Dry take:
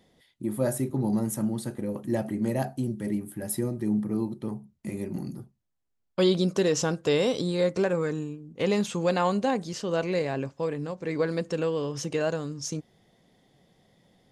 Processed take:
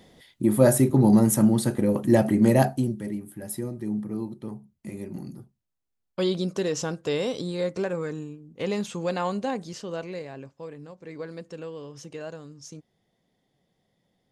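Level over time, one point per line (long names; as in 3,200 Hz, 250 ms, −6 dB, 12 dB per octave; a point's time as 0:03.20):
0:02.64 +9 dB
0:03.12 −3 dB
0:09.72 −3 dB
0:10.29 −10 dB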